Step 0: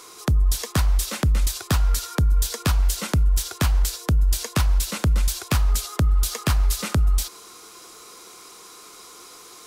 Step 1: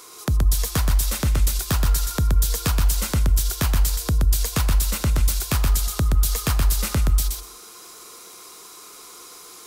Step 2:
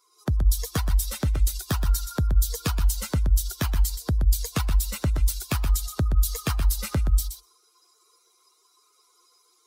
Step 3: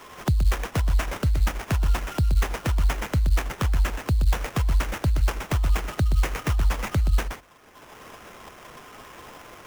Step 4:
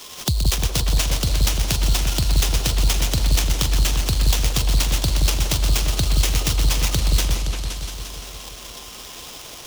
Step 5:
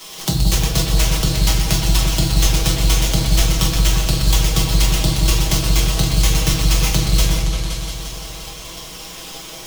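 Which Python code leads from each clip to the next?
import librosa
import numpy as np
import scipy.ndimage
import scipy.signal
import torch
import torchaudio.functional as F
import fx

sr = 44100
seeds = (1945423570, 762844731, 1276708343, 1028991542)

y1 = fx.high_shelf(x, sr, hz=12000.0, db=10.0)
y1 = fx.echo_feedback(y1, sr, ms=124, feedback_pct=16, wet_db=-4.0)
y1 = y1 * librosa.db_to_amplitude(-1.5)
y2 = fx.bin_expand(y1, sr, power=2.0)
y3 = fx.sample_hold(y2, sr, seeds[0], rate_hz=4300.0, jitter_pct=20)
y3 = fx.band_squash(y3, sr, depth_pct=70)
y4 = fx.high_shelf_res(y3, sr, hz=2600.0, db=13.5, q=1.5)
y4 = fx.echo_opening(y4, sr, ms=173, hz=750, octaves=2, feedback_pct=70, wet_db=-3)
y5 = y4 + 0.69 * np.pad(y4, (int(6.2 * sr / 1000.0), 0))[:len(y4)]
y5 = fx.room_shoebox(y5, sr, seeds[1], volume_m3=200.0, walls='mixed', distance_m=1.1)
y5 = y5 * librosa.db_to_amplitude(-1.0)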